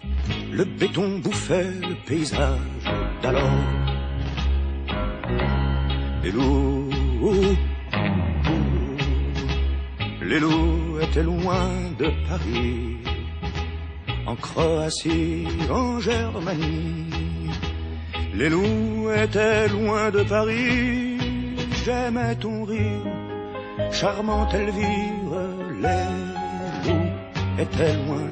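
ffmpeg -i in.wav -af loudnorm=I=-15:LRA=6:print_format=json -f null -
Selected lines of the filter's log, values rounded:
"input_i" : "-24.2",
"input_tp" : "-7.4",
"input_lra" : "3.6",
"input_thresh" : "-34.2",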